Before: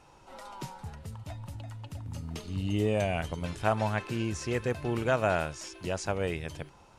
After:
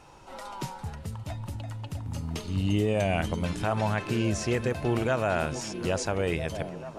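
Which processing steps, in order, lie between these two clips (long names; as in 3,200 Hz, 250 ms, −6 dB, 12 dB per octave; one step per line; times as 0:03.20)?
echo through a band-pass that steps 434 ms, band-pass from 190 Hz, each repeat 0.7 octaves, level −8 dB
brickwall limiter −21 dBFS, peak gain reduction 8 dB
level +5 dB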